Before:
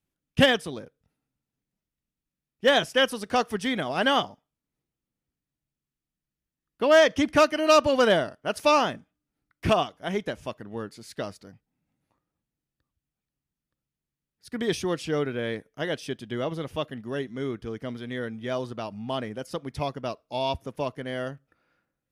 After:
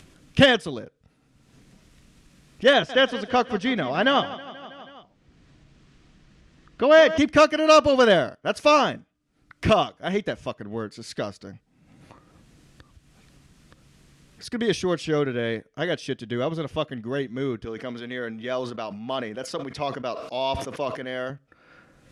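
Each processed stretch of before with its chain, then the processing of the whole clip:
2.73–7.18 air absorption 98 m + feedback echo 0.161 s, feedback 50%, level -15.5 dB
17.65–21.3 HPF 410 Hz 6 dB/oct + high shelf 6400 Hz -6 dB + sustainer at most 63 dB/s
whole clip: Bessel low-pass 7500 Hz, order 4; notch 860 Hz, Q 12; upward compressor, threshold -33 dBFS; gain +3.5 dB

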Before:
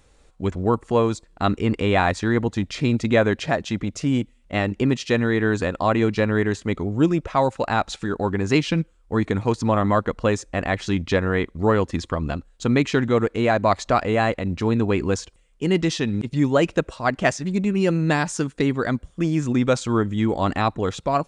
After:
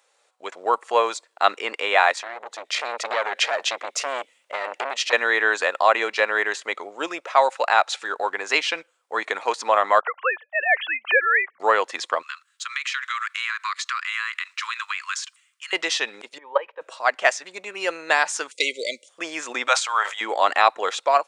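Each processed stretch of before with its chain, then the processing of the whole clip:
2.15–5.13 bell 65 Hz -3.5 dB 3 oct + compressor, threshold -23 dBFS + core saturation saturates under 1100 Hz
10–11.6 sine-wave speech + HPF 770 Hz
12.22–15.73 steep high-pass 1100 Hz 72 dB/oct + compressor 12:1, threshold -34 dBFS
16.38–16.81 level quantiser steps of 15 dB + speaker cabinet 330–2800 Hz, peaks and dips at 330 Hz -8 dB, 480 Hz +7 dB, 940 Hz +8 dB, 1400 Hz -3 dB, 2600 Hz -5 dB + notch comb 690 Hz
18.51–19.09 brick-wall FIR band-stop 630–2000 Hz + bell 6400 Hz +11.5 dB 2.1 oct
19.68–20.21 HPF 700 Hz 24 dB/oct + sustainer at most 120 dB/s
whole clip: AGC; dynamic EQ 2100 Hz, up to +4 dB, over -32 dBFS, Q 0.84; HPF 560 Hz 24 dB/oct; gain -2.5 dB

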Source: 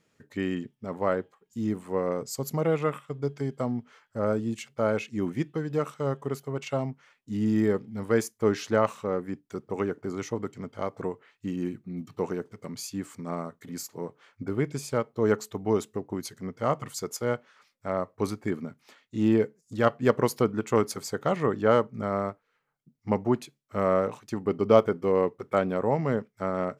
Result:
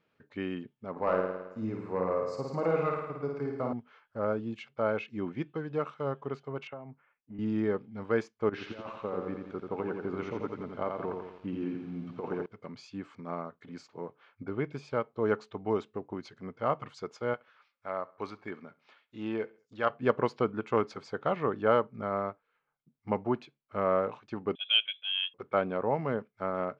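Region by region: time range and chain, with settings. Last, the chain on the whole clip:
0.91–3.73 overloaded stage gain 17 dB + bell 3200 Hz -13.5 dB 0.26 oct + flutter echo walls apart 9.3 m, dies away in 0.96 s
6.67–7.39 compressor 10:1, threshold -34 dBFS + inverse Chebyshev low-pass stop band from 9300 Hz, stop band 70 dB + three-band expander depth 70%
8.49–12.46 LPF 2900 Hz 6 dB/oct + negative-ratio compressor -29 dBFS, ratio -0.5 + lo-fi delay 86 ms, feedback 55%, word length 9-bit, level -4 dB
17.34–19.9 low shelf 430 Hz -10 dB + feedback echo 68 ms, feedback 39%, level -21.5 dB
24.55–25.34 HPF 510 Hz + high shelf 2900 Hz -10.5 dB + inverted band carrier 3700 Hz
whole clip: Bessel low-pass 2600 Hz, order 4; low shelf 460 Hz -8 dB; notch 1900 Hz, Q 9.2

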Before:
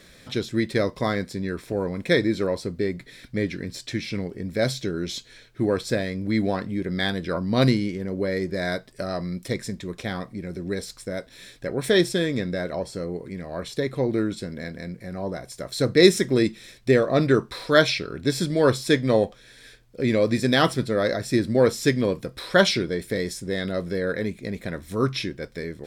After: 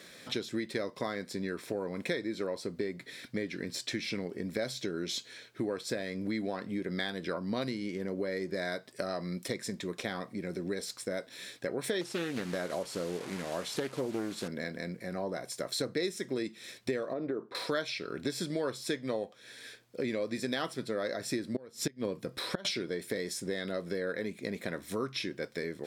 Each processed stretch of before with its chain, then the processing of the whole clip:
12.01–14.48 delta modulation 64 kbps, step -34.5 dBFS + Doppler distortion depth 0.44 ms
17.13–17.55 band-pass 410 Hz, Q 0.9 + compressor, threshold -21 dBFS
21.54–22.65 low shelf 250 Hz +7.5 dB + flipped gate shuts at -8 dBFS, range -25 dB
whole clip: Bessel high-pass 240 Hz, order 2; compressor 6:1, threshold -31 dBFS

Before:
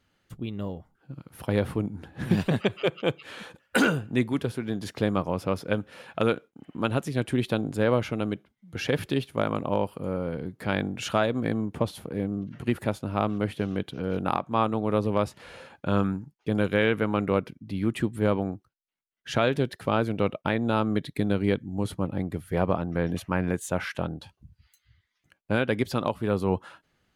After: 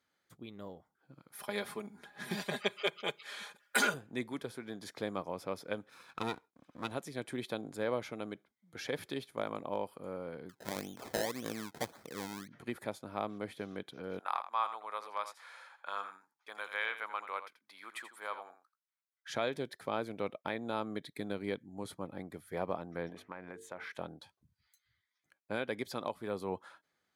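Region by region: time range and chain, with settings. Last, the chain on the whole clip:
1.32–3.94 tilt shelf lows -5.5 dB, about 700 Hz + comb 4.9 ms, depth 83%
5.89–6.92 minimum comb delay 0.78 ms + HPF 47 Hz
10.49–12.48 LPF 3800 Hz 6 dB/oct + decimation with a swept rate 26× 1.8 Hz
14.19–19.3 resonant high-pass 1100 Hz, resonance Q 1.7 + echo 84 ms -11.5 dB
23.09–23.93 tone controls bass -5 dB, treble -12 dB + notches 50/100/150/200/250/300/350/400/450 Hz + compressor 5:1, threshold -29 dBFS
whole clip: dynamic EQ 1400 Hz, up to -4 dB, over -40 dBFS, Q 2.1; HPF 520 Hz 6 dB/oct; notch 2800 Hz, Q 5.1; gain -7 dB

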